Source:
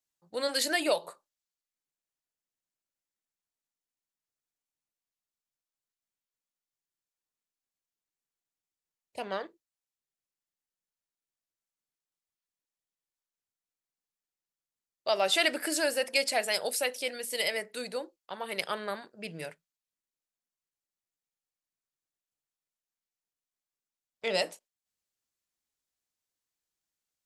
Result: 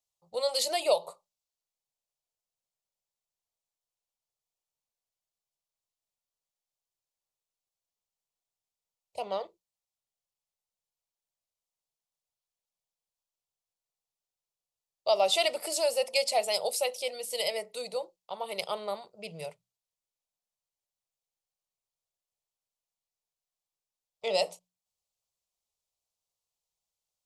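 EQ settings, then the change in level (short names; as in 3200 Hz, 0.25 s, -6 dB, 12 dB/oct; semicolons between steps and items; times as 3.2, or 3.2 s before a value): high shelf 8900 Hz -7.5 dB; notches 60/120/180 Hz; fixed phaser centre 680 Hz, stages 4; +3.5 dB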